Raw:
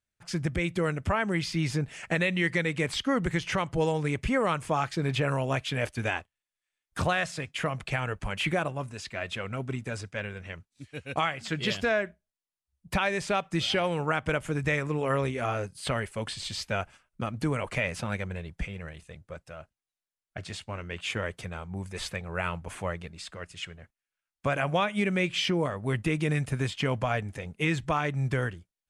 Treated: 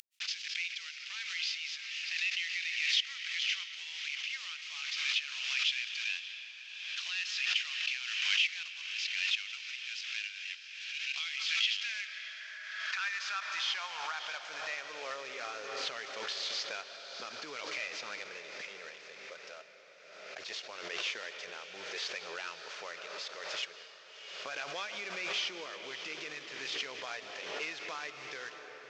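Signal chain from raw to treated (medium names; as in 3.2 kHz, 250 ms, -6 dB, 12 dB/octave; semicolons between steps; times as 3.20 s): CVSD coder 32 kbps; reverberation RT60 3.5 s, pre-delay 105 ms, DRR 12 dB; dynamic bell 560 Hz, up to -6 dB, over -40 dBFS, Q 0.85; compression, threshold -30 dBFS, peak gain reduction 7 dB; tilt shelf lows -9.5 dB, about 1.1 kHz; echo that smears into a reverb 621 ms, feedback 54%, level -12 dB; high-pass sweep 2.7 kHz -> 430 Hz, 11.70–15.53 s; swell ahead of each attack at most 37 dB/s; trim -7.5 dB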